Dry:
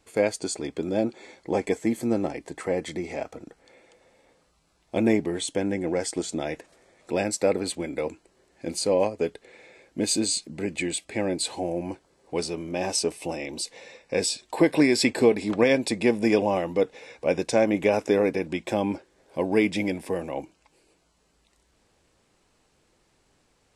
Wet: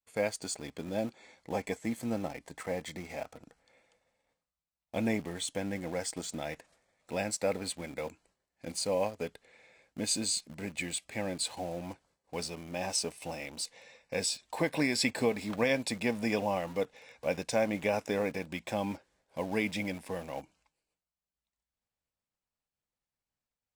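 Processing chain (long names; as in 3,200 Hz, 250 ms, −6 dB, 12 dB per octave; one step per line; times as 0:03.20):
downward expander −53 dBFS
parametric band 360 Hz −11 dB 0.67 octaves
in parallel at −8 dB: bit-depth reduction 6 bits, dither none
on the sum: level −8 dB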